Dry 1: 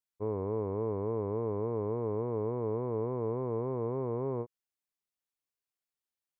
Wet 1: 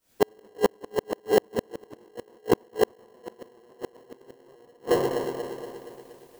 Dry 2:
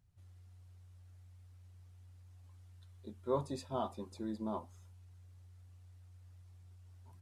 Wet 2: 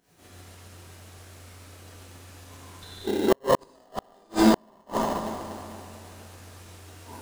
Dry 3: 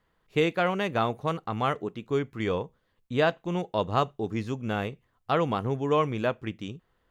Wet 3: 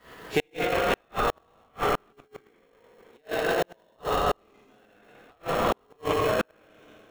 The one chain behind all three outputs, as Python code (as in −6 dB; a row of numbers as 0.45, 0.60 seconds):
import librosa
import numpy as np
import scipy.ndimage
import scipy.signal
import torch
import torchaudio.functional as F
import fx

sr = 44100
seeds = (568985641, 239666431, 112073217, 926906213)

p1 = fx.spec_trails(x, sr, decay_s=1.23)
p2 = fx.tremolo_shape(p1, sr, shape='saw_up', hz=7.4, depth_pct=75)
p3 = scipy.signal.sosfilt(scipy.signal.butter(2, 340.0, 'highpass', fs=sr, output='sos'), p2)
p4 = fx.echo_alternate(p3, sr, ms=118, hz=1400.0, feedback_pct=75, wet_db=-10.5)
p5 = fx.rev_gated(p4, sr, seeds[0], gate_ms=250, shape='flat', drr_db=-8.0)
p6 = fx.sample_hold(p5, sr, seeds[1], rate_hz=1200.0, jitter_pct=0)
p7 = p5 + (p6 * 10.0 ** (-6.0 / 20.0))
p8 = fx.over_compress(p7, sr, threshold_db=-32.0, ratio=-1.0)
p9 = fx.gate_flip(p8, sr, shuts_db=-23.0, range_db=-41)
y = p9 * 10.0 ** (-30 / 20.0) / np.sqrt(np.mean(np.square(p9)))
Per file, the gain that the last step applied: +18.0, +17.0, +11.5 decibels